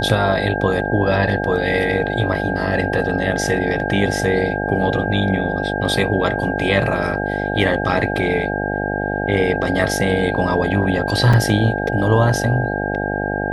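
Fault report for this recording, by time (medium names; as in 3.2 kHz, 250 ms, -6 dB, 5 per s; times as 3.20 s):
buzz 50 Hz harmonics 17 -23 dBFS
whine 1.6 kHz -25 dBFS
11.33 s: dropout 4.6 ms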